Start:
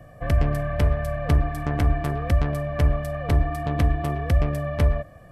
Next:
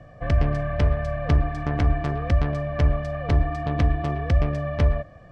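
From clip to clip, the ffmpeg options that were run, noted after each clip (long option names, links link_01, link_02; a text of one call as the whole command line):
ffmpeg -i in.wav -af "lowpass=frequency=6200:width=0.5412,lowpass=frequency=6200:width=1.3066" out.wav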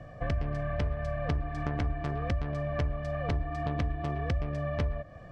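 ffmpeg -i in.wav -af "acompressor=threshold=-29dB:ratio=4" out.wav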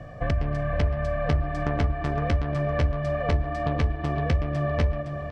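ffmpeg -i in.wav -af "aecho=1:1:513|1026|1539|2052|2565:0.447|0.197|0.0865|0.0381|0.0167,volume=5.5dB" out.wav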